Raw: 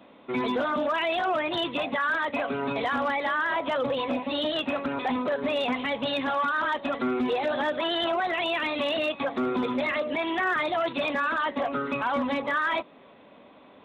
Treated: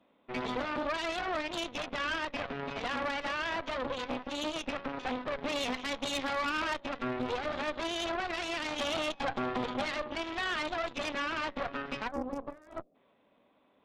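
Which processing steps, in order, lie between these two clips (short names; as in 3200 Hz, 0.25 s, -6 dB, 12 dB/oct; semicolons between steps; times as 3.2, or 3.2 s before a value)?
5.38–6.8 high shelf 4400 Hz +9.5 dB; 8.67–9.87 small resonant body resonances 800/3200 Hz, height 15 dB -> 13 dB, ringing for 45 ms; 12.08–12.95 spectral gain 780–4600 Hz -23 dB; added harmonics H 3 -23 dB, 4 -11 dB, 7 -24 dB, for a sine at -15 dBFS; gain -7 dB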